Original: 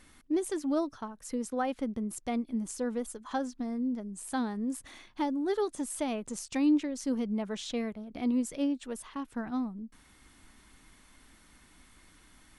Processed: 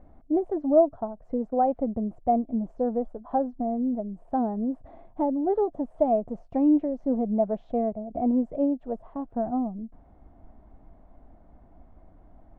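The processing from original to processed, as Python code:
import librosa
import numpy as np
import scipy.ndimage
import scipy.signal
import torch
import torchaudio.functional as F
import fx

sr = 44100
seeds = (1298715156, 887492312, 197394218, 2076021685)

y = fx.lowpass_res(x, sr, hz=680.0, q=7.0)
y = fx.low_shelf(y, sr, hz=170.0, db=11.0)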